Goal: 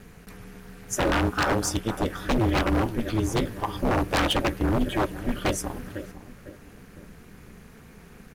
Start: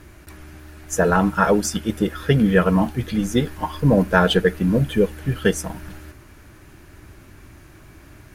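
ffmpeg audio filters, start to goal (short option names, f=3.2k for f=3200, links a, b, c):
-filter_complex "[0:a]asplit=2[a][b];[b]adelay=503,lowpass=f=1.6k:p=1,volume=-15.5dB,asplit=2[c][d];[d]adelay=503,lowpass=f=1.6k:p=1,volume=0.42,asplit=2[e][f];[f]adelay=503,lowpass=f=1.6k:p=1,volume=0.42,asplit=2[g][h];[h]adelay=503,lowpass=f=1.6k:p=1,volume=0.42[i];[a][c][e][g][i]amix=inputs=5:normalize=0,aeval=exprs='val(0)*sin(2*PI*110*n/s)':c=same,aeval=exprs='0.158*(abs(mod(val(0)/0.158+3,4)-2)-1)':c=same"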